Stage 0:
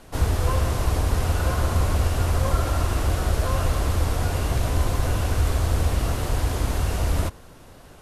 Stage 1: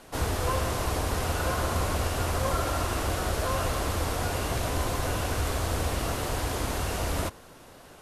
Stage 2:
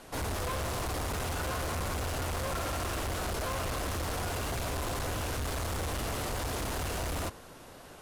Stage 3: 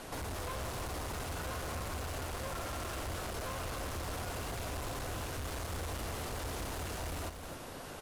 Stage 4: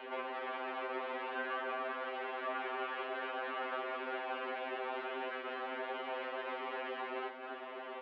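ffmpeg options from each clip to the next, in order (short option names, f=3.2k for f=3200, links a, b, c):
-af "lowshelf=f=150:g=-11"
-af "volume=31.5dB,asoftclip=hard,volume=-31.5dB"
-af "acompressor=threshold=-45dB:ratio=5,aecho=1:1:268:0.398,volume=4.5dB"
-af "highpass=f=210:t=q:w=0.5412,highpass=f=210:t=q:w=1.307,lowpass=f=2.9k:t=q:w=0.5176,lowpass=f=2.9k:t=q:w=0.7071,lowpass=f=2.9k:t=q:w=1.932,afreqshift=85,afftfilt=real='re*2.45*eq(mod(b,6),0)':imag='im*2.45*eq(mod(b,6),0)':win_size=2048:overlap=0.75,volume=5dB"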